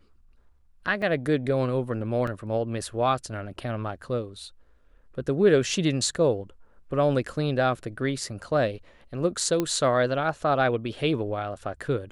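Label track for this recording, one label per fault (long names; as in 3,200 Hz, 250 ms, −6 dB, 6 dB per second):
1.020000	1.020000	drop-out 2.8 ms
2.270000	2.270000	drop-out 4 ms
9.600000	9.600000	click −12 dBFS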